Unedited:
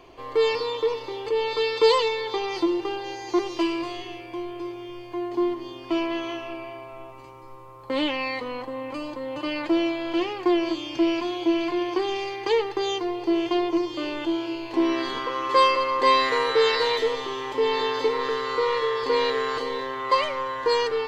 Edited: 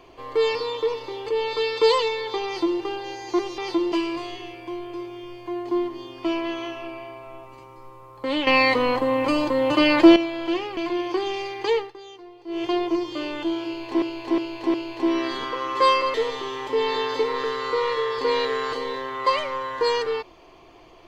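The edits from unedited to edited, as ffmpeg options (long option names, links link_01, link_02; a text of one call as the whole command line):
ffmpeg -i in.wav -filter_complex "[0:a]asplit=12[link_01][link_02][link_03][link_04][link_05][link_06][link_07][link_08][link_09][link_10][link_11][link_12];[link_01]atrim=end=3.582[link_13];[link_02]atrim=start=2.458:end=2.802[link_14];[link_03]atrim=start=3.578:end=8.132[link_15];[link_04]atrim=start=8.128:end=9.822,asetpts=PTS-STARTPTS,volume=11dB[link_16];[link_05]atrim=start=9.818:end=10.432[link_17];[link_06]atrim=start=11.588:end=12.75,asetpts=PTS-STARTPTS,afade=type=out:start_time=0.992:duration=0.17:silence=0.158489[link_18];[link_07]atrim=start=12.75:end=13.29,asetpts=PTS-STARTPTS,volume=-16dB[link_19];[link_08]atrim=start=13.29:end=14.842,asetpts=PTS-STARTPTS,afade=type=in:duration=0.17:silence=0.158489[link_20];[link_09]atrim=start=14.478:end=14.842[link_21];[link_10]atrim=start=14.478:end=14.842[link_22];[link_11]atrim=start=14.478:end=15.882[link_23];[link_12]atrim=start=16.988[link_24];[link_13][link_14]acrossfade=duration=0.004:curve1=hsin:curve2=hsin[link_25];[link_25][link_15]acrossfade=duration=0.004:curve1=hsin:curve2=hsin[link_26];[link_26][link_16]acrossfade=duration=0.004:curve1=hsin:curve2=hsin[link_27];[link_27][link_17]acrossfade=duration=0.004:curve1=hsin:curve2=hsin[link_28];[link_18][link_19][link_20]concat=n=3:v=0:a=1[link_29];[link_28][link_29]acrossfade=duration=0.004:curve1=hsin:curve2=hsin[link_30];[link_30][link_21]acrossfade=duration=0.004:curve1=hsin:curve2=hsin[link_31];[link_31][link_22]acrossfade=duration=0.004:curve1=hsin:curve2=hsin[link_32];[link_32][link_23]acrossfade=duration=0.004:curve1=hsin:curve2=hsin[link_33];[link_33][link_24]acrossfade=duration=0.004:curve1=hsin:curve2=hsin" out.wav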